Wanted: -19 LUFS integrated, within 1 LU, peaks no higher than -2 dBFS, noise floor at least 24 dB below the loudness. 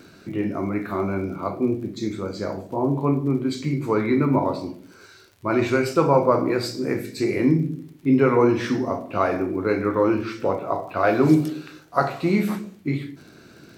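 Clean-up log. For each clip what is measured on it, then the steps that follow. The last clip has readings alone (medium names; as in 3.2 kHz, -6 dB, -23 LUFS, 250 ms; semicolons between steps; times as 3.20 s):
tick rate 41 per s; loudness -23.0 LUFS; peak level -4.5 dBFS; loudness target -19.0 LUFS
-> de-click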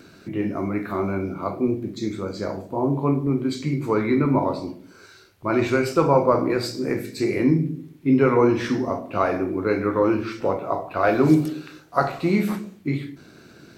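tick rate 0.22 per s; loudness -23.0 LUFS; peak level -4.5 dBFS; loudness target -19.0 LUFS
-> trim +4 dB; peak limiter -2 dBFS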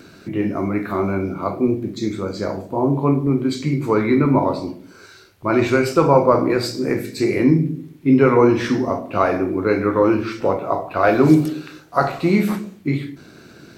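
loudness -19.0 LUFS; peak level -2.0 dBFS; noise floor -45 dBFS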